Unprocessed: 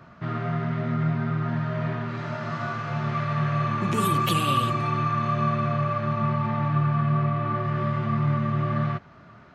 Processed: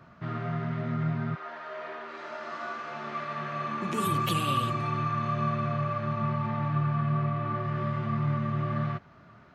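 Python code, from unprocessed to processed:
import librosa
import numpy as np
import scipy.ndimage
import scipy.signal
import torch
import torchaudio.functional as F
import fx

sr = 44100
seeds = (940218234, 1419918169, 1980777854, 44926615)

y = fx.highpass(x, sr, hz=fx.line((1.34, 470.0), (4.05, 170.0)), slope=24, at=(1.34, 4.05), fade=0.02)
y = F.gain(torch.from_numpy(y), -4.5).numpy()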